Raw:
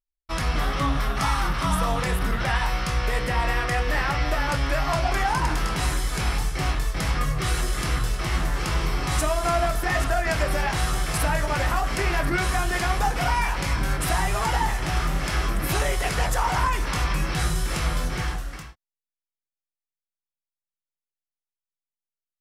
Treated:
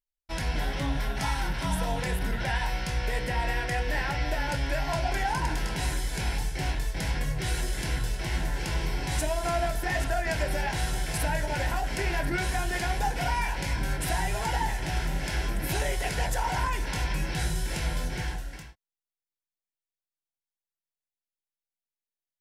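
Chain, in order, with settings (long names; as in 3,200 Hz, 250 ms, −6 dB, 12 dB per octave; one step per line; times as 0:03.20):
Butterworth band-reject 1,200 Hz, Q 3.6
level −4.5 dB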